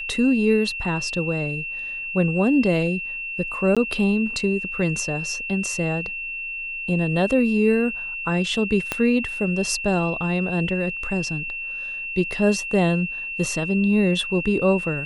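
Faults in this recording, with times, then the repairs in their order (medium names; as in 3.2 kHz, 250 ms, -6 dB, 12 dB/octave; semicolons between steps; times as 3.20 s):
whine 2.7 kHz -28 dBFS
3.75–3.77 s: dropout 16 ms
8.92 s: pop -8 dBFS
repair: de-click; band-stop 2.7 kHz, Q 30; interpolate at 3.75 s, 16 ms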